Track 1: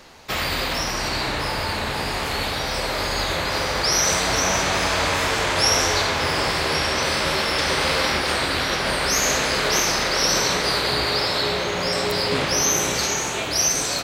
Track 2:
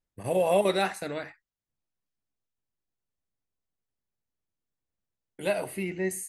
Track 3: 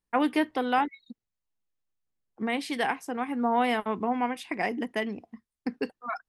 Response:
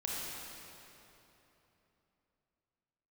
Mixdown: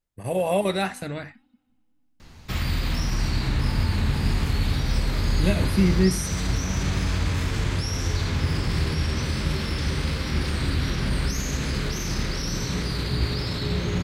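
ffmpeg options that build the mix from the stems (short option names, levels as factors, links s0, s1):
-filter_complex "[0:a]alimiter=limit=0.133:level=0:latency=1:release=18,adelay=2200,volume=0.501[s0];[1:a]volume=1.19[s1];[2:a]acrossover=split=190|3000[s2][s3][s4];[s3]acompressor=threshold=0.01:ratio=6[s5];[s2][s5][s4]amix=inputs=3:normalize=0,adelay=250,volume=0.15,asplit=3[s6][s7][s8];[s7]volume=0.158[s9];[s8]volume=0.531[s10];[3:a]atrim=start_sample=2205[s11];[s9][s11]afir=irnorm=-1:irlink=0[s12];[s10]aecho=0:1:183|366|549|732:1|0.25|0.0625|0.0156[s13];[s0][s1][s6][s12][s13]amix=inputs=5:normalize=0,asubboost=boost=11.5:cutoff=190"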